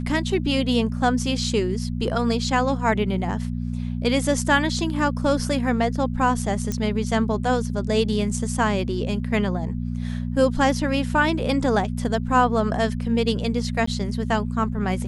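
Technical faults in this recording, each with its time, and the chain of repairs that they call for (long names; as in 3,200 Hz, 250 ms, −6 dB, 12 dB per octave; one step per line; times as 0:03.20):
mains hum 60 Hz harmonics 4 −27 dBFS
0:06.72: click −13 dBFS
0:13.86–0:13.87: drop-out 14 ms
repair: click removal
hum removal 60 Hz, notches 4
repair the gap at 0:13.86, 14 ms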